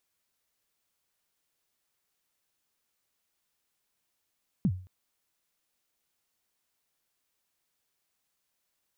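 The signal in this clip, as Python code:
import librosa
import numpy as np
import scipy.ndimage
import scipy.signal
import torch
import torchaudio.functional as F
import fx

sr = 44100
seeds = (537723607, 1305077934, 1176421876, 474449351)

y = fx.drum_kick(sr, seeds[0], length_s=0.22, level_db=-19, start_hz=230.0, end_hz=92.0, sweep_ms=61.0, decay_s=0.41, click=False)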